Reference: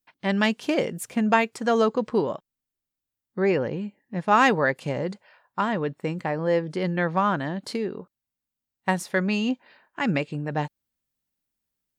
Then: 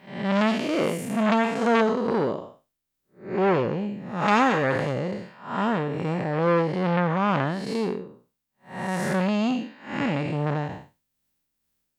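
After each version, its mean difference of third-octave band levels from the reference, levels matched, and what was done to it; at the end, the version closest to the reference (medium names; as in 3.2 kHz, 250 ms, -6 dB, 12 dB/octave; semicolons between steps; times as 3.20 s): 7.5 dB: spectral blur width 229 ms; tremolo 2.3 Hz, depth 37%; transformer saturation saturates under 1.4 kHz; trim +9 dB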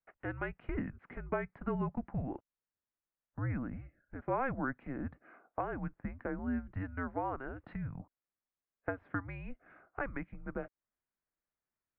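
10.5 dB: bass shelf 130 Hz +9.5 dB; compression 2.5:1, threshold -34 dBFS, peak gain reduction 13.5 dB; mistuned SSB -270 Hz 320–2300 Hz; trim -2 dB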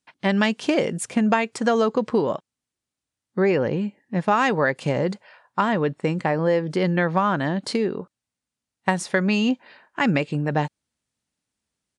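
2.0 dB: high-pass 56 Hz; compression 6:1, threshold -22 dBFS, peak gain reduction 8.5 dB; resampled via 22.05 kHz; trim +6 dB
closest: third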